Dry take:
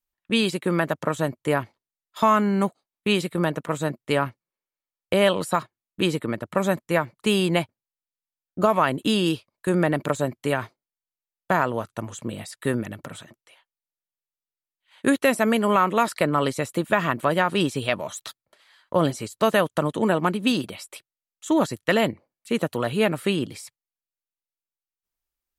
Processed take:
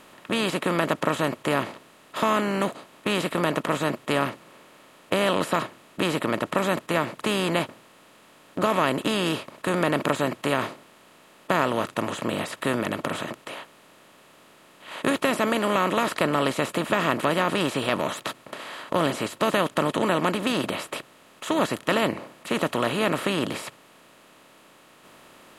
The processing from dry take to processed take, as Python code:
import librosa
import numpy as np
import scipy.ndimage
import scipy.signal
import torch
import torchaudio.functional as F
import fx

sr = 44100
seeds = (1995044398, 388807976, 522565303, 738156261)

y = fx.bin_compress(x, sr, power=0.4)
y = F.gain(torch.from_numpy(y), -8.0).numpy()